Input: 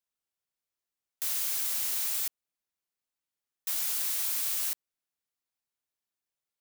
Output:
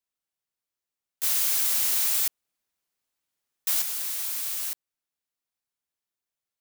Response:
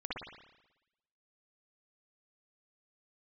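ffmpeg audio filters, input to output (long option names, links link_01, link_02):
-filter_complex "[0:a]asettb=1/sr,asplit=3[link_01][link_02][link_03];[link_01]atrim=end=1.234[link_04];[link_02]atrim=start=1.23:end=3.82,asetpts=PTS-STARTPTS,afade=type=in:duration=0.004:curve=qsin,afade=type=out:start_time=2.586:duration=0.004:curve=qsin,acontrast=70[link_05];[link_03]atrim=start=3.816[link_06];[link_04][link_05]acrossfade=duration=0.004:curve1=hsin:curve2=qsin[link_07];[link_07][link_06]acrossfade=duration=0.004:curve1=qsin:curve2=hsin"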